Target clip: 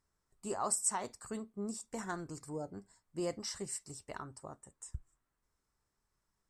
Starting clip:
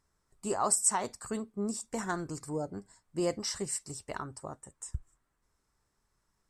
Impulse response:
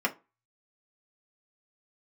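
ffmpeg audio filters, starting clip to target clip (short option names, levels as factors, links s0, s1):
-filter_complex "[0:a]asplit=2[s0][s1];[1:a]atrim=start_sample=2205,adelay=26[s2];[s1][s2]afir=irnorm=-1:irlink=0,volume=0.0299[s3];[s0][s3]amix=inputs=2:normalize=0,volume=0.501"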